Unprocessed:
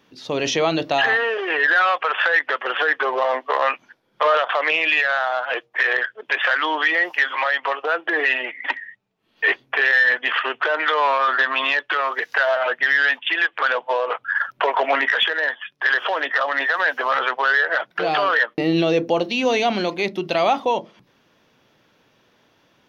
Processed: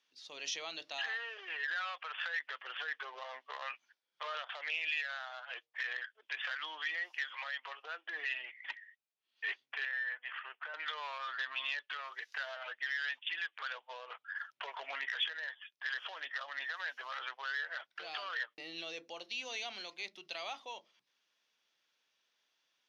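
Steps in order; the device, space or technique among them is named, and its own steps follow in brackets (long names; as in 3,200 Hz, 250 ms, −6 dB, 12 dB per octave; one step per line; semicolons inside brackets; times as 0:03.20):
0:04.50–0:05.10: notch filter 1,100 Hz, Q 5.1
piezo pickup straight into a mixer (low-pass filter 5,900 Hz 12 dB per octave; first difference)
0:09.85–0:10.74: three-way crossover with the lows and the highs turned down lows −14 dB, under 460 Hz, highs −19 dB, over 2,400 Hz
level −7.5 dB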